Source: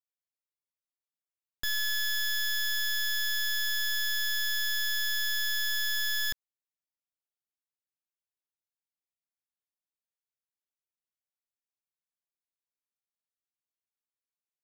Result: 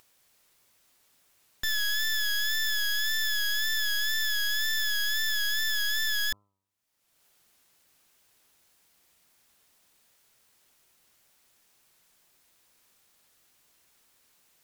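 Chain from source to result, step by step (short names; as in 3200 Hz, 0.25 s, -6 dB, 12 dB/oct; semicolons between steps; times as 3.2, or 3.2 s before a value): de-hum 99.27 Hz, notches 13; upward compressor, threshold -45 dBFS; wow and flutter 51 cents; gain +2 dB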